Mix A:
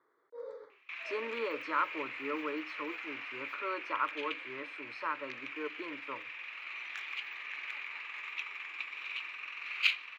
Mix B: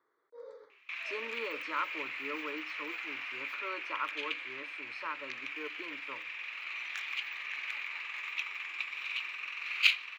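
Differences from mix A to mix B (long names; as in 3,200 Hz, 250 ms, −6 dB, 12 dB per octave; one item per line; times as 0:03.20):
speech −4.5 dB
master: add high-shelf EQ 3,300 Hz +8.5 dB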